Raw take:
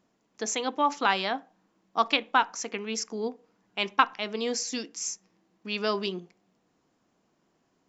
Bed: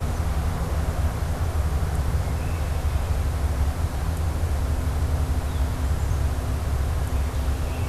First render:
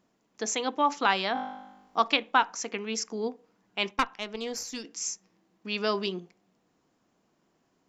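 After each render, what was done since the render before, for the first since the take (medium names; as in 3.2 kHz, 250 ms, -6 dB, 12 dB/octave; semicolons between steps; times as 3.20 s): 1.33–2.00 s: flutter echo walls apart 3.4 m, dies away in 0.95 s; 3.91–4.85 s: valve stage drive 16 dB, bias 0.8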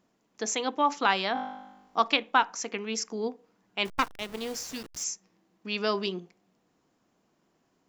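3.85–5.04 s: send-on-delta sampling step -39.5 dBFS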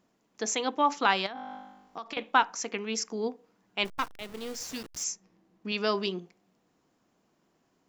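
1.26–2.17 s: compression, threshold -36 dBFS; 3.84–4.61 s: partial rectifier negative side -7 dB; 5.12–5.72 s: tilt EQ -1.5 dB/octave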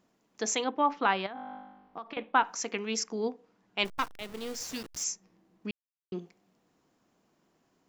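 0.64–2.45 s: distance through air 340 m; 3.04–3.79 s: distance through air 52 m; 5.71–6.12 s: mute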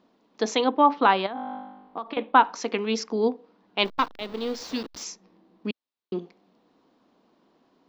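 ten-band graphic EQ 125 Hz -4 dB, 250 Hz +9 dB, 500 Hz +6 dB, 1 kHz +7 dB, 4 kHz +11 dB, 8 kHz -9 dB, 16 kHz -11 dB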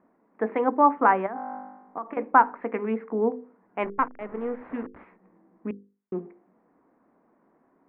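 steep low-pass 2.1 kHz 48 dB/octave; hum notches 50/100/150/200/250/300/350/400/450/500 Hz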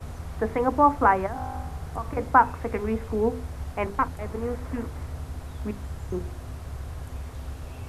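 add bed -11.5 dB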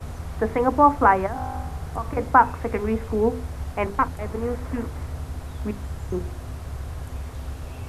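trim +3 dB; peak limiter -3 dBFS, peak gain reduction 1.5 dB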